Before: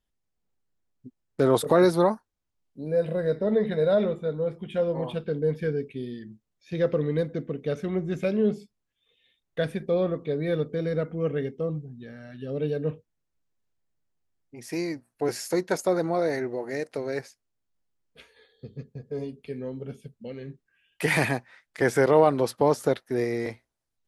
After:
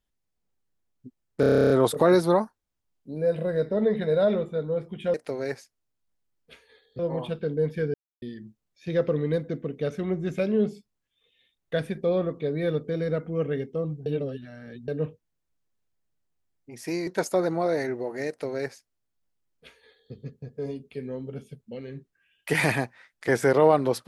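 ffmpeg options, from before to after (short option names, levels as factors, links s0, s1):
-filter_complex "[0:a]asplit=18[s0][s1][s2][s3][s4][s5][s6][s7][s8][s9][s10][s11][s12][s13][s14][s15][s16][s17];[s0]atrim=end=1.432[s18];[s1]atrim=start=1.398:end=1.432[s19];[s2]atrim=start=1.398:end=1.432[s20];[s3]atrim=start=1.398:end=1.432[s21];[s4]atrim=start=1.398:end=1.432[s22];[s5]atrim=start=1.398:end=1.432[s23];[s6]atrim=start=1.398:end=1.432[s24];[s7]atrim=start=1.398:end=1.432[s25];[s8]atrim=start=1.398:end=1.432[s26];[s9]atrim=start=1.398:end=1.432[s27];[s10]atrim=start=1.398:end=4.842[s28];[s11]atrim=start=16.808:end=18.662[s29];[s12]atrim=start=4.838:end=5.79,asetpts=PTS-STARTPTS,afade=t=out:st=0.948:d=0.004:c=hsin[s30];[s13]atrim=start=5.79:end=6.07,asetpts=PTS-STARTPTS,volume=0[s31];[s14]atrim=start=6.07:end=11.912,asetpts=PTS-STARTPTS,afade=t=in:d=0.004:c=hsin[s32];[s15]atrim=start=11.908:end=12.732,asetpts=PTS-STARTPTS,areverse[s33];[s16]atrim=start=12.728:end=14.922[s34];[s17]atrim=start=15.598[s35];[s18][s19]acrossfade=d=0.004:c1=hsin:c2=hsin[s36];[s36][s20]acrossfade=d=0.004:c1=hsin:c2=hsin[s37];[s37][s21]acrossfade=d=0.004:c1=hsin:c2=hsin[s38];[s38][s22]acrossfade=d=0.004:c1=hsin:c2=hsin[s39];[s39][s23]acrossfade=d=0.004:c1=hsin:c2=hsin[s40];[s40][s24]acrossfade=d=0.004:c1=hsin:c2=hsin[s41];[s41][s25]acrossfade=d=0.004:c1=hsin:c2=hsin[s42];[s42][s26]acrossfade=d=0.004:c1=hsin:c2=hsin[s43];[s43][s27]acrossfade=d=0.004:c1=hsin:c2=hsin[s44];[s44][s28]acrossfade=d=0.004:c1=hsin:c2=hsin[s45];[s45][s29]acrossfade=d=0.004:c1=hsin:c2=hsin[s46];[s30][s31][s32]concat=n=3:v=0:a=1[s47];[s46][s47]acrossfade=d=0.004:c1=hsin:c2=hsin[s48];[s48][s33]acrossfade=d=0.004:c1=hsin:c2=hsin[s49];[s49][s34]acrossfade=d=0.004:c1=hsin:c2=hsin[s50];[s50][s35]acrossfade=d=0.004:c1=hsin:c2=hsin"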